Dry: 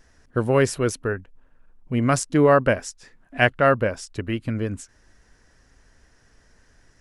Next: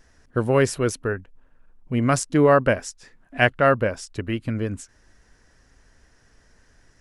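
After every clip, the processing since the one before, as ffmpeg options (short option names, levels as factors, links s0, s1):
-af anull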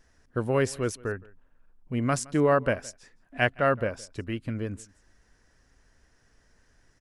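-af "aecho=1:1:167:0.0668,volume=0.501"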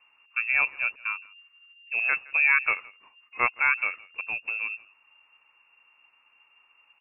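-af "lowpass=f=2400:t=q:w=0.5098,lowpass=f=2400:t=q:w=0.6013,lowpass=f=2400:t=q:w=0.9,lowpass=f=2400:t=q:w=2.563,afreqshift=-2800"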